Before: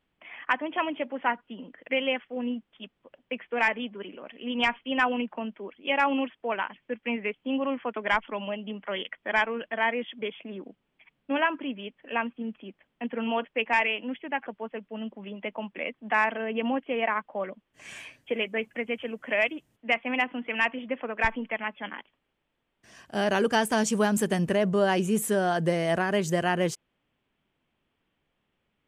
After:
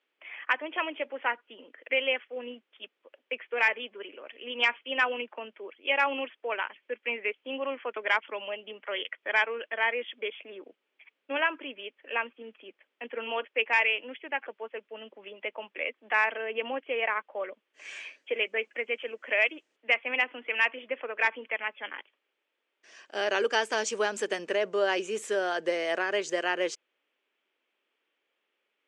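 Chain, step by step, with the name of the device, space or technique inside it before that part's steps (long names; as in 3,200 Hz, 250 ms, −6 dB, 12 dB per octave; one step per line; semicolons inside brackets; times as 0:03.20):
phone speaker on a table (loudspeaker in its box 380–7,000 Hz, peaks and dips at 720 Hz −6 dB, 1,000 Hz −4 dB, 2,400 Hz +3 dB)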